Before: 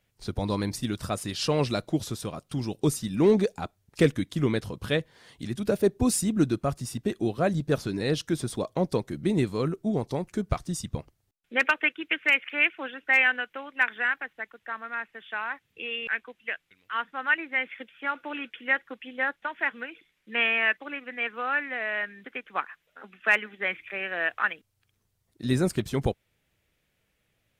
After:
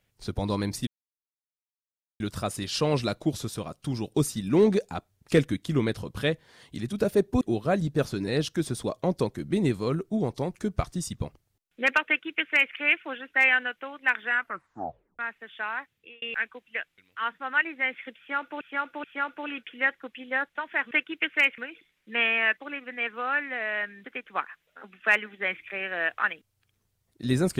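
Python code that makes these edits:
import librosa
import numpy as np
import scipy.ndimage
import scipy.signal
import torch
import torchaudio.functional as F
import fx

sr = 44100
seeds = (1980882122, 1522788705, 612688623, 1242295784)

y = fx.edit(x, sr, fx.insert_silence(at_s=0.87, length_s=1.33),
    fx.cut(start_s=6.08, length_s=1.06),
    fx.duplicate(start_s=11.8, length_s=0.67, to_s=19.78),
    fx.tape_stop(start_s=14.06, length_s=0.86),
    fx.fade_out_span(start_s=15.52, length_s=0.43),
    fx.repeat(start_s=17.91, length_s=0.43, count=3), tone=tone)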